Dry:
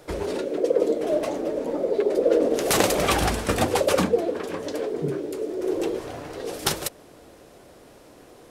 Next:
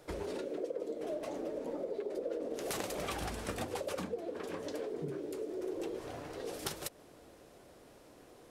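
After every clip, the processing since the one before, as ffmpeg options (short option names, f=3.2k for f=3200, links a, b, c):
-af "acompressor=threshold=-27dB:ratio=5,volume=-8.5dB"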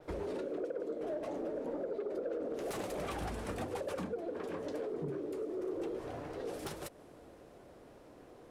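-af "adynamicequalizer=threshold=0.00126:dfrequency=9800:dqfactor=1:tfrequency=9800:tqfactor=1:attack=5:release=100:ratio=0.375:range=2:mode=boostabove:tftype=bell,asoftclip=type=tanh:threshold=-32.5dB,highshelf=f=2.8k:g=-11,volume=2.5dB"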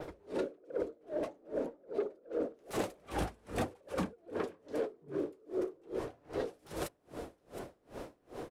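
-af "acompressor=threshold=-51dB:ratio=2,aecho=1:1:715:0.133,aeval=exprs='val(0)*pow(10,-33*(0.5-0.5*cos(2*PI*2.5*n/s))/20)':c=same,volume=15dB"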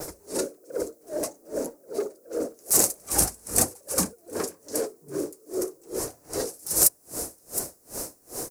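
-af "aexciter=amount=14.8:drive=6.2:freq=5.1k,volume=5.5dB"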